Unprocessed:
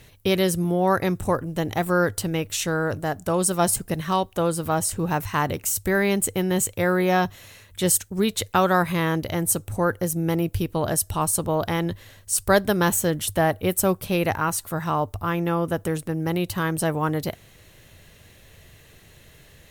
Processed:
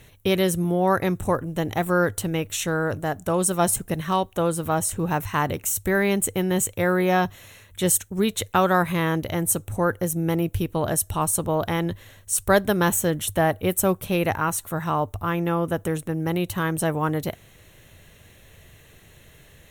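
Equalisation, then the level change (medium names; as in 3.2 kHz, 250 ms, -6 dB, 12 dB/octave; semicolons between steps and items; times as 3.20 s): peaking EQ 4.8 kHz -11 dB 0.25 oct; 0.0 dB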